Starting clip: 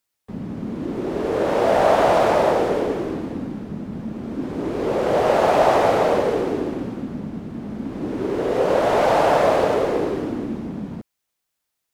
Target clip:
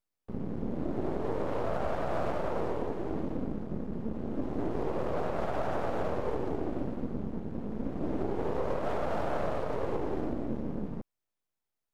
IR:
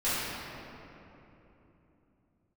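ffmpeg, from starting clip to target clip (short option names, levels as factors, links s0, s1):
-af "aeval=exprs='max(val(0),0)':c=same,tiltshelf=f=1300:g=5.5,alimiter=limit=0.224:level=0:latency=1:release=307,volume=0.473"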